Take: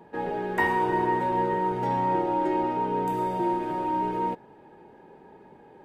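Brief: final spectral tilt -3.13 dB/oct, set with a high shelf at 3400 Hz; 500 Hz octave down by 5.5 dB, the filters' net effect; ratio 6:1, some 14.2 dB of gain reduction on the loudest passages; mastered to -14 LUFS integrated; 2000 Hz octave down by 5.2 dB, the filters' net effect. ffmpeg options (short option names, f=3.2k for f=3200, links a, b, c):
-af "equalizer=f=500:t=o:g=-7.5,equalizer=f=2k:t=o:g=-4.5,highshelf=f=3.4k:g=-3,acompressor=threshold=-40dB:ratio=6,volume=28dB"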